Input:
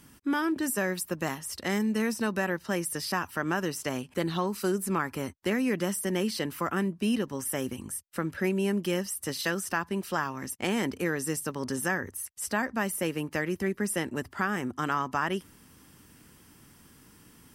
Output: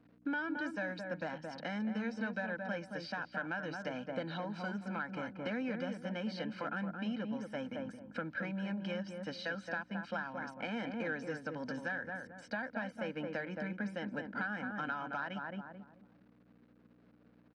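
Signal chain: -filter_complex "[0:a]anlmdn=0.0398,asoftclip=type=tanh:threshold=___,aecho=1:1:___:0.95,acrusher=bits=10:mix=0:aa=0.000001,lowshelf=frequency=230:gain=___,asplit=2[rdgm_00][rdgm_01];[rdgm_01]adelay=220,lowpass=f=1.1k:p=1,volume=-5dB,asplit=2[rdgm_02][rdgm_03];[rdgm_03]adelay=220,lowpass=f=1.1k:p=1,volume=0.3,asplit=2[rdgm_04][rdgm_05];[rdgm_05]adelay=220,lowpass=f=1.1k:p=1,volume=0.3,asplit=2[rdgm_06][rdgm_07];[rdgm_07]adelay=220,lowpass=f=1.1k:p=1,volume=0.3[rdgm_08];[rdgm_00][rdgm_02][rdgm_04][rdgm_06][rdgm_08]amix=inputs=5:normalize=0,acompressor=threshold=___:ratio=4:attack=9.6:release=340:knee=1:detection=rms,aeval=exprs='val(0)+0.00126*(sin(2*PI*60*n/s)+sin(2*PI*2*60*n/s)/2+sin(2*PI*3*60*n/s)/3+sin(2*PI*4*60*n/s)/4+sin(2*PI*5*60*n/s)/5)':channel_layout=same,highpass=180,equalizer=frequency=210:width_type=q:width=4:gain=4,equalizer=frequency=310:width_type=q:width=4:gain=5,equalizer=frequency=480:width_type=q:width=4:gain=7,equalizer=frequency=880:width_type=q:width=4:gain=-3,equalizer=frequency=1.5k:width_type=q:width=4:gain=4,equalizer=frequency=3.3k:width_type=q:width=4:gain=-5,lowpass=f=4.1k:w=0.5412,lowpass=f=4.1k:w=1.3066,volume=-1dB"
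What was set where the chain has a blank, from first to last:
-19dB, 1.3, -5, -36dB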